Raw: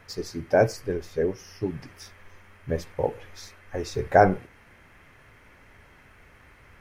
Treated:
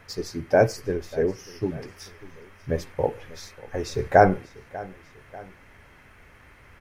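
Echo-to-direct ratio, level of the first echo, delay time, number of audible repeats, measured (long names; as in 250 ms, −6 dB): −19.0 dB, −20.0 dB, 592 ms, 2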